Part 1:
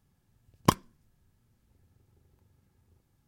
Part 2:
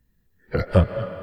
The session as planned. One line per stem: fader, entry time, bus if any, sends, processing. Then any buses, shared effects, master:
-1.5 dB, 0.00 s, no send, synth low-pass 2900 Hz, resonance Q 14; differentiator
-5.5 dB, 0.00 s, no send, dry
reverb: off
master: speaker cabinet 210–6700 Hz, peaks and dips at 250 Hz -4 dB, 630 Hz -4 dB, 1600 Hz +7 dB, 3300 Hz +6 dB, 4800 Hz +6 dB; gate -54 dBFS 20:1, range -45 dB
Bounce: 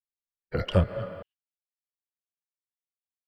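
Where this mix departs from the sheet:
stem 1 -1.5 dB -> -8.0 dB; master: missing speaker cabinet 210–6700 Hz, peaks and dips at 250 Hz -4 dB, 630 Hz -4 dB, 1600 Hz +7 dB, 3300 Hz +6 dB, 4800 Hz +6 dB

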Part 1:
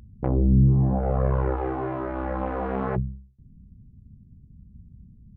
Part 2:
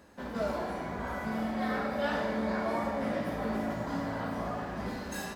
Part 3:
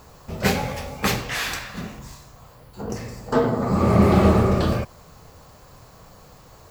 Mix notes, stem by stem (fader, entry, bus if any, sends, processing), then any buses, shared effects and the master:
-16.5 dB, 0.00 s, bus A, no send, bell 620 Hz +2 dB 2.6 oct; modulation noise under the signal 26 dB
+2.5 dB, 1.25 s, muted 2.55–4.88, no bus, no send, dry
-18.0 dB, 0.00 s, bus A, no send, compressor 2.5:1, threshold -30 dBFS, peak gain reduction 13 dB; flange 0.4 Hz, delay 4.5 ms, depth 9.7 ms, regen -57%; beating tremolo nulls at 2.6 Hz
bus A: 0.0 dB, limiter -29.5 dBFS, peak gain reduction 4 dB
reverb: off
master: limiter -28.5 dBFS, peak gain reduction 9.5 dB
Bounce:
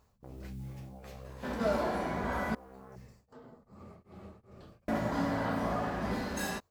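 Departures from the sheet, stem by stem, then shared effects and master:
stem 1 -16.5 dB -> -26.0 dB; master: missing limiter -28.5 dBFS, peak gain reduction 9.5 dB

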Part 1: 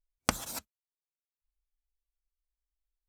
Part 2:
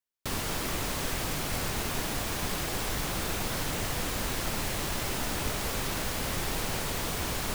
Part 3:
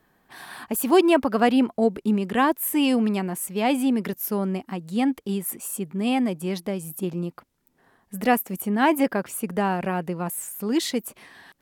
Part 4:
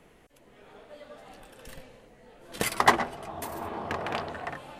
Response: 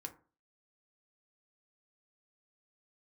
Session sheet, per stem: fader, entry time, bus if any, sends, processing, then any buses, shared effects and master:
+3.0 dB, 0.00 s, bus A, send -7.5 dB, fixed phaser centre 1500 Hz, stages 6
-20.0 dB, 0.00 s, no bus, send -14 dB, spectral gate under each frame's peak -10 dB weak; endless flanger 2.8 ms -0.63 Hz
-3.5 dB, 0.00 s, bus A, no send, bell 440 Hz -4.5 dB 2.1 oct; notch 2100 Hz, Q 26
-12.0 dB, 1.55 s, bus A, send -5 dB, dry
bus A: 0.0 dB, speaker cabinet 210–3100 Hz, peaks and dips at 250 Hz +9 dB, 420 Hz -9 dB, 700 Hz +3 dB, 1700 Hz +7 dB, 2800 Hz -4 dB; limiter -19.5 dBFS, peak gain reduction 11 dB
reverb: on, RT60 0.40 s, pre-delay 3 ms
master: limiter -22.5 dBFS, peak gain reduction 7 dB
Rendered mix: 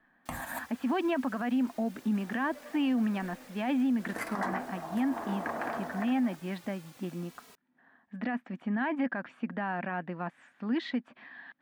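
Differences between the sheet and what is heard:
stem 1: send -7.5 dB -> -0.5 dB; stem 4 -12.0 dB -> -4.5 dB

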